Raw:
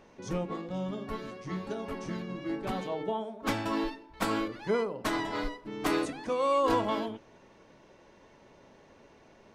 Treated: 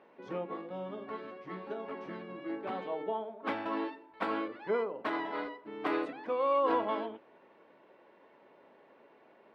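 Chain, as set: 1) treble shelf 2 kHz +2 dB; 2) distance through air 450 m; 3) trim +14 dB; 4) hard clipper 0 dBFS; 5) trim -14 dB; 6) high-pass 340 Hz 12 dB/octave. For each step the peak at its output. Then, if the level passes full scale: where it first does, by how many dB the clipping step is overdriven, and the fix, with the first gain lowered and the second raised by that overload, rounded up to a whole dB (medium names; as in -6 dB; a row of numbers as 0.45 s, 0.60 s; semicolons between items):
-13.5 dBFS, -16.0 dBFS, -2.0 dBFS, -2.0 dBFS, -16.0 dBFS, -18.0 dBFS; nothing clips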